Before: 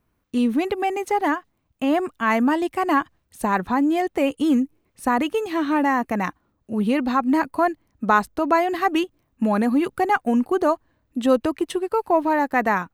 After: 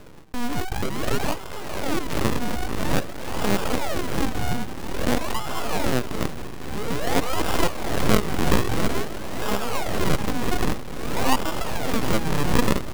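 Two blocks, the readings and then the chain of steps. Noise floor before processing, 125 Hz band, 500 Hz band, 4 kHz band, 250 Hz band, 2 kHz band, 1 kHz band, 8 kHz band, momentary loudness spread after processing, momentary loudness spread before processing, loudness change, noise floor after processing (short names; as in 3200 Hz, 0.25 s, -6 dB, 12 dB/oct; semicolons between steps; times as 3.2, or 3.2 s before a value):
-70 dBFS, +11.0 dB, -4.0 dB, +6.5 dB, -6.0 dB, -3.5 dB, -6.5 dB, +10.0 dB, 8 LU, 7 LU, -4.0 dB, -31 dBFS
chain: Wiener smoothing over 41 samples; HPF 130 Hz 24 dB/oct; low shelf 190 Hz -11 dB; on a send: diffused feedback echo 0.505 s, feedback 69%, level -12.5 dB; on the sum: decimation with a swept rate 41×, swing 100% 0.5 Hz; bell 240 Hz -5.5 dB 1.4 oct; in parallel at -5 dB: bit-crush 6-bit; on the sum: full-wave rectifier; swung echo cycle 0.719 s, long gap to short 1.5:1, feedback 54%, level -23 dB; backwards sustainer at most 38 dB/s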